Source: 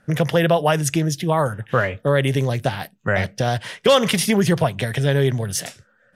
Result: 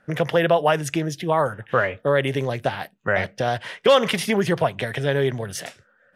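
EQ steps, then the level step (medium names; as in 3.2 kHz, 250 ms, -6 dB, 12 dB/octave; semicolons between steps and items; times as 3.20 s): tone controls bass -8 dB, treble -9 dB; 0.0 dB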